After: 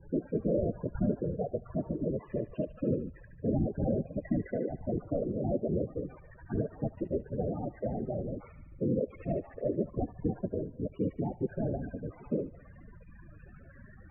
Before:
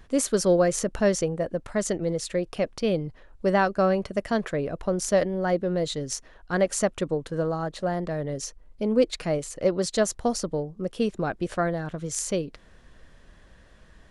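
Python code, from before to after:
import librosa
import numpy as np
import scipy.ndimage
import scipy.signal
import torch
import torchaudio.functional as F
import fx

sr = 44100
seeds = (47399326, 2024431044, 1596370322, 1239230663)

y = fx.delta_mod(x, sr, bps=16000, step_db=-38.5)
y = fx.whisperise(y, sr, seeds[0])
y = fx.spec_topn(y, sr, count=16)
y = fx.echo_wet_highpass(y, sr, ms=73, feedback_pct=60, hz=1500.0, wet_db=-6.0)
y = y * 10.0 ** (-4.0 / 20.0)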